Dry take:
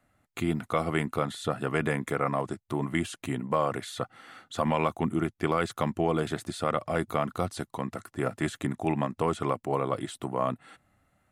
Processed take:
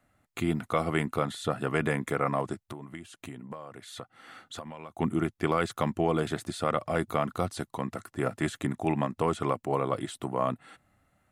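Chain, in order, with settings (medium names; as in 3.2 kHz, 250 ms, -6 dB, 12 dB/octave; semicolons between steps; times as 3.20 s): 2.59–4.97 s: compression 16:1, threshold -38 dBFS, peak gain reduction 18.5 dB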